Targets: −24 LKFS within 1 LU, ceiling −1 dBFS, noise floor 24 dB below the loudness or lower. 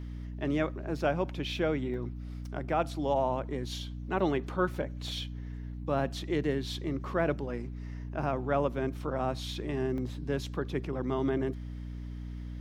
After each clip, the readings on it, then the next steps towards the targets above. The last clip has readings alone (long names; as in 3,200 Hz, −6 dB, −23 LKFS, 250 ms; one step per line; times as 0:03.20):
number of dropouts 2; longest dropout 1.1 ms; mains hum 60 Hz; hum harmonics up to 300 Hz; level of the hum −37 dBFS; integrated loudness −33.0 LKFS; sample peak −14.5 dBFS; target loudness −24.0 LKFS
→ repair the gap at 0:01.94/0:09.98, 1.1 ms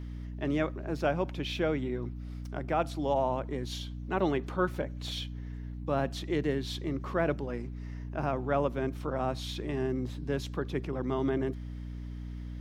number of dropouts 0; mains hum 60 Hz; hum harmonics up to 300 Hz; level of the hum −37 dBFS
→ hum removal 60 Hz, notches 5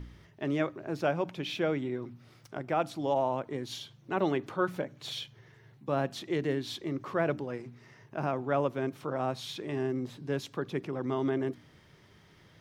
mains hum none found; integrated loudness −33.0 LKFS; sample peak −15.0 dBFS; target loudness −24.0 LKFS
→ level +9 dB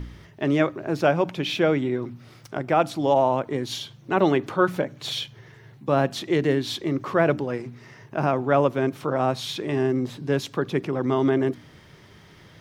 integrated loudness −24.0 LKFS; sample peak −6.0 dBFS; background noise floor −50 dBFS